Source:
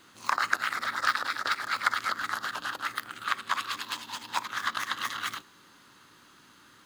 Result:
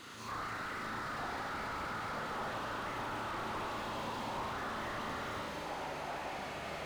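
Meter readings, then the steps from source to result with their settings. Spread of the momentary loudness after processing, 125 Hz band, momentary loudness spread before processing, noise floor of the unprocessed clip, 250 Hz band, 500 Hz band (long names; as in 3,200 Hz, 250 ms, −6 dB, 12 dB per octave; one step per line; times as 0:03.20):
2 LU, +9.5 dB, 7 LU, −57 dBFS, +6.0 dB, +6.5 dB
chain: high-shelf EQ 11,000 Hz −8 dB
notch filter 1,600 Hz, Q 17
transient designer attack −10 dB, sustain +7 dB
downward compressor 2.5 to 1, threshold −46 dBFS, peak gain reduction 14 dB
flutter between parallel walls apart 6.2 metres, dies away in 0.6 s
delay with pitch and tempo change per echo 756 ms, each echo −7 semitones, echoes 3, each echo −6 dB
slew-rate limiting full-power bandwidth 7.8 Hz
level +6 dB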